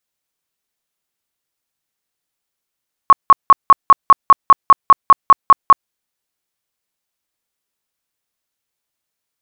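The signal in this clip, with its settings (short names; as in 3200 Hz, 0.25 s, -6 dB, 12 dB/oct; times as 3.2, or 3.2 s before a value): tone bursts 1100 Hz, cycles 30, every 0.20 s, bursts 14, -1.5 dBFS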